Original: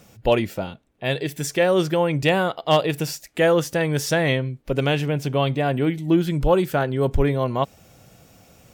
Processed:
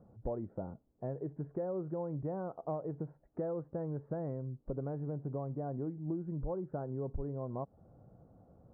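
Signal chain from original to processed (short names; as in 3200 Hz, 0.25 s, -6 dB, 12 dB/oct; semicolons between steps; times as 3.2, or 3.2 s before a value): Bessel low-pass 690 Hz, order 8; compressor, threshold -28 dBFS, peak gain reduction 14 dB; gain -7 dB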